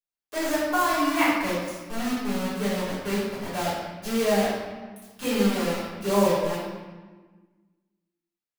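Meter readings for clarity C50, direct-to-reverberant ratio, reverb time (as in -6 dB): -1.0 dB, -14.0 dB, 1.4 s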